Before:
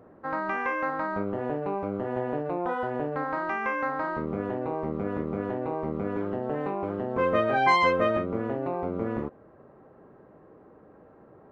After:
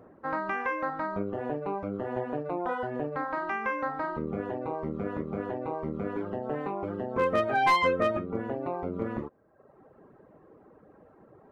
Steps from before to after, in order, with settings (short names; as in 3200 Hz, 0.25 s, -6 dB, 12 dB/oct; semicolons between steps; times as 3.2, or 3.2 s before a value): reverb removal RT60 0.97 s; overloaded stage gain 16.5 dB